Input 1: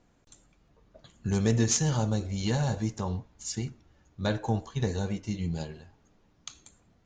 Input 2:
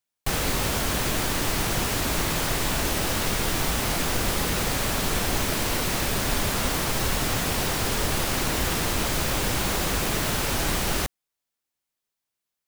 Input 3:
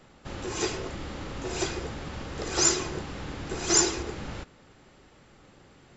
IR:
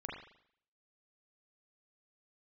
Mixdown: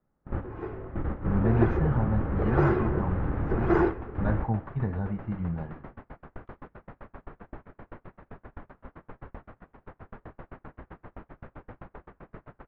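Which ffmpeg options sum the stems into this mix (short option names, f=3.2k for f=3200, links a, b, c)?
-filter_complex "[0:a]equalizer=f=450:w=1.6:g=-8,volume=1dB,asplit=2[a][b];[1:a]aeval=exprs='val(0)*pow(10,-22*if(lt(mod(7.7*n/s,1),2*abs(7.7)/1000),1-mod(7.7*n/s,1)/(2*abs(7.7)/1000),(mod(7.7*n/s,1)-2*abs(7.7)/1000)/(1-2*abs(7.7)/1000))/20)':c=same,adelay=2200,volume=-10.5dB[c];[2:a]lowshelf=f=170:g=8.5,volume=3dB,asplit=2[d][e];[e]volume=-17dB[f];[b]apad=whole_len=263031[g];[d][g]sidechaingate=range=-14dB:threshold=-56dB:ratio=16:detection=peak[h];[3:a]atrim=start_sample=2205[i];[f][i]afir=irnorm=-1:irlink=0[j];[a][c][h][j]amix=inputs=4:normalize=0,lowpass=f=1.6k:w=0.5412,lowpass=f=1.6k:w=1.3066,agate=range=-17dB:threshold=-42dB:ratio=16:detection=peak"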